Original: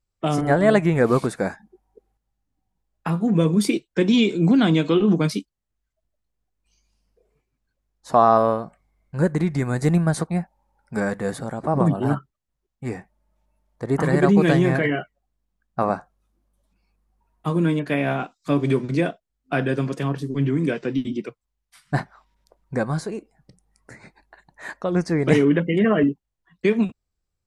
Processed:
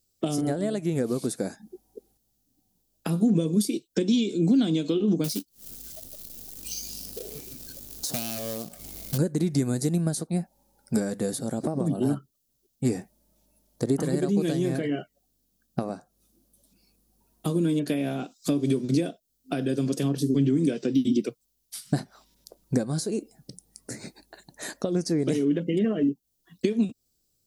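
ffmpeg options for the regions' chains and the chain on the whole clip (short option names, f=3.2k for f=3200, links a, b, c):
-filter_complex "[0:a]asettb=1/sr,asplit=3[a][b][c];[a]atrim=end=5.244[d];[b]atrim=start=5.24:end=9.18,asetpts=PTS-STARTPTS,afade=t=in:d=0.004:c=qsin,afade=t=out:st=3.936:d=0.004:c=qsin,acrusher=bits=2:mode=log:mix=0:aa=0.000001,acompressor=mode=upward:threshold=-27dB:ratio=2.5:attack=3.2:release=140:knee=2.83:detection=peak,aeval=exprs='0.2*(abs(mod(val(0)/0.2+3,4)-2)-1)':c=same[e];[c]atrim=start=9.176[f];[d][e]acrossfade=d=0.004:c1=hsin:c2=qsin[g];[g][f]acrossfade=d=0.004:c1=qsin:c2=hsin,bass=f=250:g=-12,treble=f=4k:g=15,acompressor=threshold=-33dB:ratio=10,equalizer=f=125:t=o:w=1:g=7,equalizer=f=250:t=o:w=1:g=8,equalizer=f=1k:t=o:w=1:g=-11,equalizer=f=2k:t=o:w=1:g=-9,equalizer=f=8k:t=o:w=1:g=-6,volume=8dB"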